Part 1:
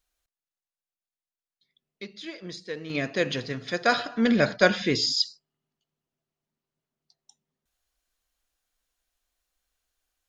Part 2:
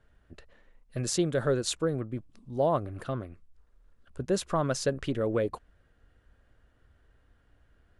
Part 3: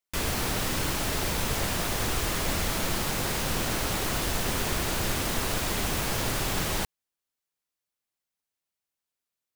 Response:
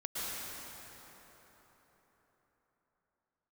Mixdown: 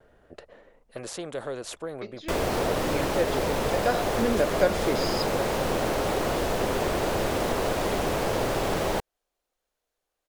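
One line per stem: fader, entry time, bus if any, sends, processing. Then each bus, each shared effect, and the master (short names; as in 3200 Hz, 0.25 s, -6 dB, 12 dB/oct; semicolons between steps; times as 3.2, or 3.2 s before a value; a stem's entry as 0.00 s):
-7.0 dB, 0.00 s, no send, dry
-7.0 dB, 0.00 s, no send, spectral compressor 2:1
+1.0 dB, 2.15 s, no send, high shelf 5700 Hz -6.5 dB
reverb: off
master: bell 530 Hz +12.5 dB 1.8 oct; vibrato 0.58 Hz 19 cents; compressor 1.5:1, threshold -28 dBFS, peak gain reduction 7 dB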